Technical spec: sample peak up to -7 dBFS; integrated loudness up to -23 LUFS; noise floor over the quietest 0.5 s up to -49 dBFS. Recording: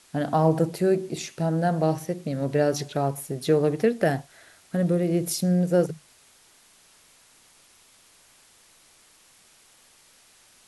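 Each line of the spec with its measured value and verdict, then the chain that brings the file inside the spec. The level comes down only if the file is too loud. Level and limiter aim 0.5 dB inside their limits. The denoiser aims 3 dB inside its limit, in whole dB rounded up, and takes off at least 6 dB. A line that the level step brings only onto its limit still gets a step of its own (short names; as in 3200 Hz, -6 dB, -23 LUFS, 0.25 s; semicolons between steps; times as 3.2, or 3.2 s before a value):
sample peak -8.0 dBFS: OK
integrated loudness -25.0 LUFS: OK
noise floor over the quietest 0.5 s -57 dBFS: OK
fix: none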